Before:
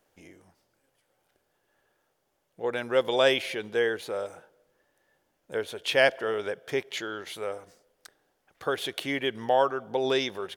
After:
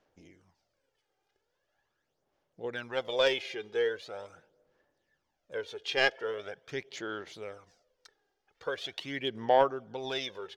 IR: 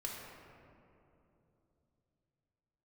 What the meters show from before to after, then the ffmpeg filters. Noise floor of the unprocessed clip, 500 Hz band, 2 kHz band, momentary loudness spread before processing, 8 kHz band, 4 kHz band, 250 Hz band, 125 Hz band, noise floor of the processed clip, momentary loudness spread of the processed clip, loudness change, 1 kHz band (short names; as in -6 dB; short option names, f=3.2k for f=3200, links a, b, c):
-75 dBFS, -5.0 dB, -4.5 dB, 13 LU, -7.5 dB, -3.5 dB, -7.0 dB, -5.0 dB, -81 dBFS, 15 LU, -4.5 dB, -2.5 dB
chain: -af "aeval=exprs='0.447*(cos(1*acos(clip(val(0)/0.447,-1,1)))-cos(1*PI/2))+0.0631*(cos(3*acos(clip(val(0)/0.447,-1,1)))-cos(3*PI/2))':c=same,highshelf=f=7.8k:t=q:w=1.5:g=-12,aphaser=in_gain=1:out_gain=1:delay=2.5:decay=0.56:speed=0.42:type=sinusoidal,volume=-4dB"